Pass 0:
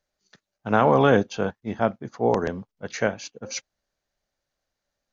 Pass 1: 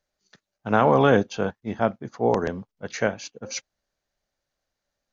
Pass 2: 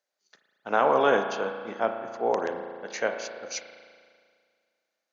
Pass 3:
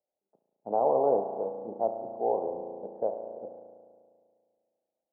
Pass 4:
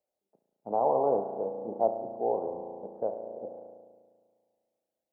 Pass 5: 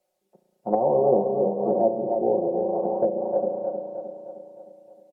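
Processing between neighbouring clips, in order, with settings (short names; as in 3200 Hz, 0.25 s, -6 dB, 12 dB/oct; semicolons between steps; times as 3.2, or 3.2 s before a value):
nothing audible
HPF 400 Hz 12 dB/oct; spring tank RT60 2 s, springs 35 ms, chirp 25 ms, DRR 6 dB; gain -2.5 dB
steep low-pass 840 Hz 48 dB/oct; dynamic EQ 220 Hz, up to -7 dB, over -40 dBFS, Q 0.97
phaser 0.55 Hz, delay 1.1 ms, feedback 26%
comb 5.5 ms, depth 83%; feedback echo 0.309 s, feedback 53%, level -6.5 dB; treble ducked by the level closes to 430 Hz, closed at -25 dBFS; gain +9 dB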